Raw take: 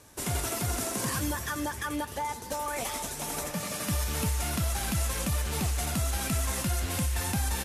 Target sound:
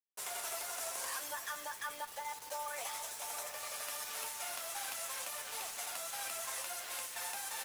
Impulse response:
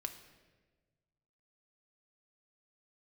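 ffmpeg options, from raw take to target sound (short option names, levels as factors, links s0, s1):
-af "highpass=f=590:w=0.5412,highpass=f=590:w=1.3066,acrusher=bits=6:mix=0:aa=0.000001,flanger=delay=8.9:depth=2.2:regen=-50:speed=0.52:shape=triangular,volume=0.708"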